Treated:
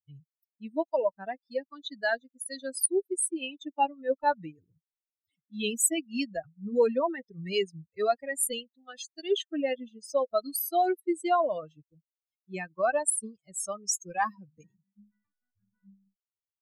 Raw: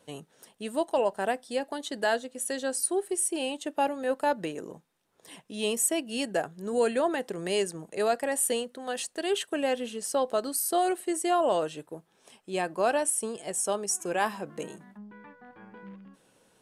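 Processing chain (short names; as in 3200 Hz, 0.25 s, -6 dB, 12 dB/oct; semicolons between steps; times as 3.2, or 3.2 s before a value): per-bin expansion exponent 3; gain +5.5 dB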